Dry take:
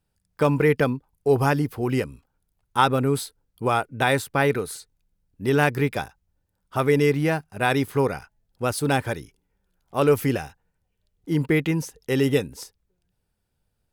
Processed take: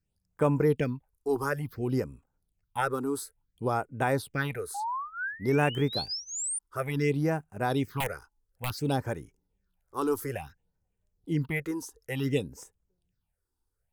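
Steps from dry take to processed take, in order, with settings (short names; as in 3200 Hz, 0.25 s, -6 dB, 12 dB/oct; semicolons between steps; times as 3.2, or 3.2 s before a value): 4.74–6.59 painted sound rise 780–9400 Hz -27 dBFS; 8–8.78 wrapped overs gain 15 dB; phaser stages 6, 0.57 Hz, lowest notch 150–4500 Hz; gain -5.5 dB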